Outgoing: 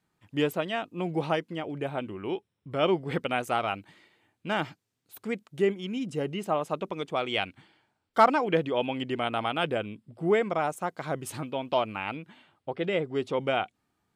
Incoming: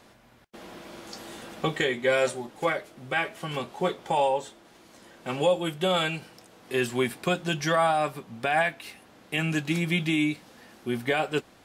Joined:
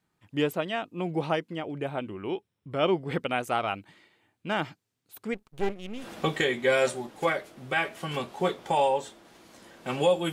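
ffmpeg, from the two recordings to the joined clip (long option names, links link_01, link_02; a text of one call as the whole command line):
ffmpeg -i cue0.wav -i cue1.wav -filter_complex "[0:a]asplit=3[link_01][link_02][link_03];[link_01]afade=type=out:start_time=5.33:duration=0.02[link_04];[link_02]aeval=exprs='max(val(0),0)':channel_layout=same,afade=type=in:start_time=5.33:duration=0.02,afade=type=out:start_time=6.08:duration=0.02[link_05];[link_03]afade=type=in:start_time=6.08:duration=0.02[link_06];[link_04][link_05][link_06]amix=inputs=3:normalize=0,apad=whole_dur=10.32,atrim=end=10.32,atrim=end=6.08,asetpts=PTS-STARTPTS[link_07];[1:a]atrim=start=1.34:end=5.72,asetpts=PTS-STARTPTS[link_08];[link_07][link_08]acrossfade=duration=0.14:curve1=tri:curve2=tri" out.wav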